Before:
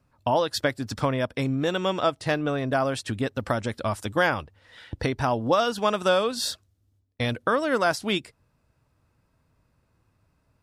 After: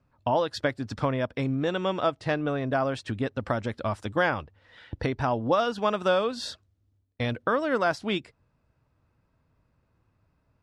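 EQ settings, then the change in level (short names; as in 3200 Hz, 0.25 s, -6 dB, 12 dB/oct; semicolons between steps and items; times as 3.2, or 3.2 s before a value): air absorption 53 m; high shelf 4600 Hz -6.5 dB; -1.5 dB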